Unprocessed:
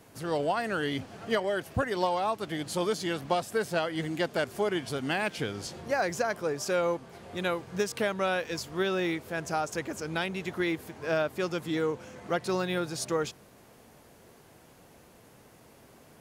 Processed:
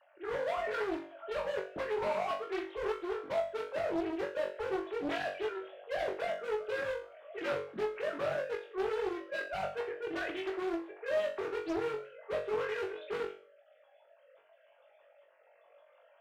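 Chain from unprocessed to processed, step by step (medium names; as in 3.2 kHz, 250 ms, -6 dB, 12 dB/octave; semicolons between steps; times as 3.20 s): formants replaced by sine waves; saturation -23.5 dBFS, distortion -13 dB; low-pass that closes with the level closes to 1.1 kHz, closed at -28 dBFS; overload inside the chain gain 33 dB; comb of notches 250 Hz; on a send: flutter echo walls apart 3.6 m, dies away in 0.4 s; on the sum: loudspeaker Doppler distortion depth 0.53 ms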